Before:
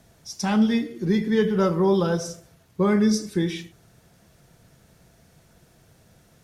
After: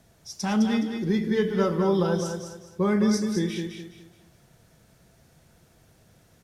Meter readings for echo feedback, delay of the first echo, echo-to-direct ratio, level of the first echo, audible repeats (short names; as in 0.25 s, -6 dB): 31%, 0.209 s, -6.0 dB, -6.5 dB, 3